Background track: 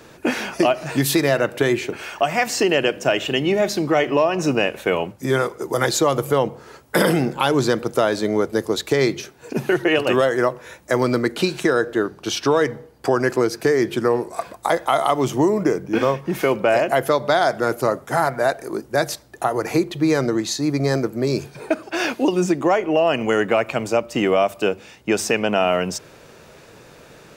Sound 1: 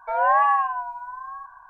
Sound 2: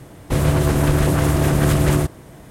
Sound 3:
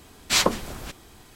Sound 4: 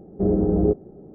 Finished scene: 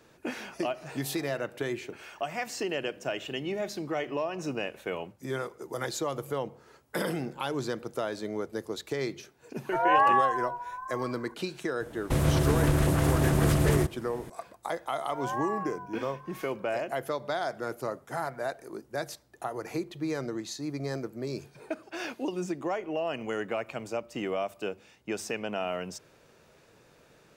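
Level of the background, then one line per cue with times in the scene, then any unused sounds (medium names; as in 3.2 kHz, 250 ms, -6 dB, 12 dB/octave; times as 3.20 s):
background track -14 dB
0.63 s: add 4 -6.5 dB + high-pass 880 Hz 24 dB/octave
9.65 s: add 1 -3.5 dB
11.80 s: add 2 -7.5 dB + recorder AGC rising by 10 dB/s
15.03 s: add 1 -15 dB
not used: 3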